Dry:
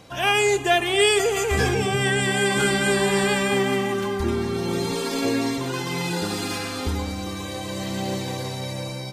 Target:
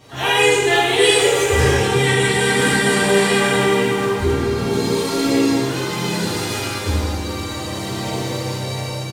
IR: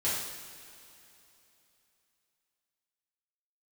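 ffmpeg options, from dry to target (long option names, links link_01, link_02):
-filter_complex "[0:a]bandreject=frequency=212.4:width_type=h:width=4,bandreject=frequency=424.8:width_type=h:width=4,bandreject=frequency=637.2:width_type=h:width=4,bandreject=frequency=849.6:width_type=h:width=4,bandreject=frequency=1062:width_type=h:width=4,bandreject=frequency=1274.4:width_type=h:width=4,bandreject=frequency=1486.8:width_type=h:width=4,bandreject=frequency=1699.2:width_type=h:width=4,bandreject=frequency=1911.6:width_type=h:width=4,bandreject=frequency=2124:width_type=h:width=4,bandreject=frequency=2336.4:width_type=h:width=4,bandreject=frequency=2548.8:width_type=h:width=4,bandreject=frequency=2761.2:width_type=h:width=4,bandreject=frequency=2973.6:width_type=h:width=4,bandreject=frequency=3186:width_type=h:width=4,asplit=3[link_01][link_02][link_03];[link_02]asetrate=33038,aresample=44100,atempo=1.33484,volume=-15dB[link_04];[link_03]asetrate=52444,aresample=44100,atempo=0.840896,volume=-5dB[link_05];[link_01][link_04][link_05]amix=inputs=3:normalize=0[link_06];[1:a]atrim=start_sample=2205[link_07];[link_06][link_07]afir=irnorm=-1:irlink=0,volume=-4dB"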